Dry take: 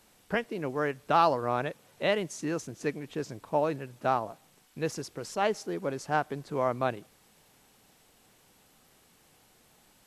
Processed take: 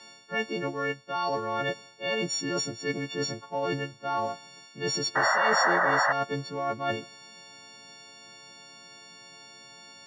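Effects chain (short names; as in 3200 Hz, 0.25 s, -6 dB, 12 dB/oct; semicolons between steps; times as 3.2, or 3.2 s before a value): frequency quantiser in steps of 4 st; elliptic band-pass 120–5700 Hz, stop band 40 dB; reverse; compressor 20:1, threshold -34 dBFS, peak gain reduction 19 dB; reverse; painted sound noise, 5.15–6.13, 520–2000 Hz -32 dBFS; gain +8 dB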